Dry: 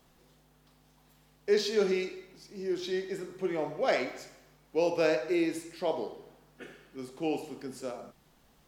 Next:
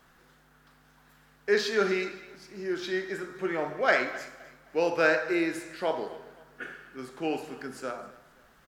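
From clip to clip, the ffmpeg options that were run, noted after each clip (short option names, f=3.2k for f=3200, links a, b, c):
-af "equalizer=f=1.5k:w=1.6:g=14,aecho=1:1:260|520|780:0.106|0.0371|0.013"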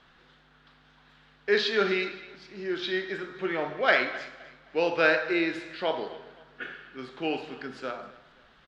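-af "lowpass=f=3.6k:t=q:w=2.4"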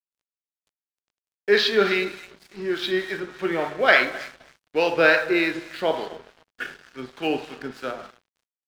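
-filter_complex "[0:a]acrossover=split=680[a][b];[a]aeval=exprs='val(0)*(1-0.5/2+0.5/2*cos(2*PI*3.4*n/s))':c=same[c];[b]aeval=exprs='val(0)*(1-0.5/2-0.5/2*cos(2*PI*3.4*n/s))':c=same[d];[c][d]amix=inputs=2:normalize=0,aeval=exprs='sgn(val(0))*max(abs(val(0))-0.00282,0)':c=same,volume=8dB"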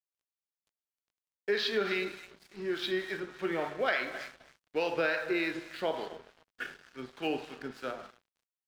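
-af "acompressor=threshold=-19dB:ratio=6,volume=-7dB"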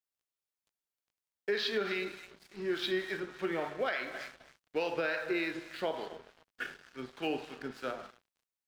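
-af "alimiter=limit=-22.5dB:level=0:latency=1:release=448"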